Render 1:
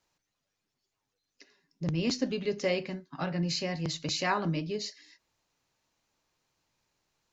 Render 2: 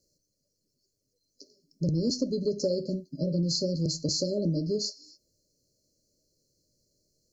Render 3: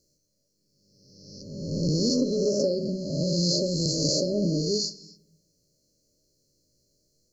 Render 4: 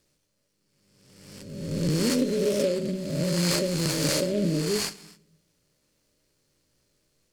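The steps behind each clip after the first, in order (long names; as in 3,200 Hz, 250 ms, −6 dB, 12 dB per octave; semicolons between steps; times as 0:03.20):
brick-wall band-stop 640–4,100 Hz; downward compressor 5 to 1, threshold −31 dBFS, peak gain reduction 7.5 dB; level +7 dB
peak hold with a rise ahead of every peak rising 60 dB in 1.34 s; on a send at −16 dB: convolution reverb RT60 0.85 s, pre-delay 7 ms
short delay modulated by noise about 2,600 Hz, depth 0.03 ms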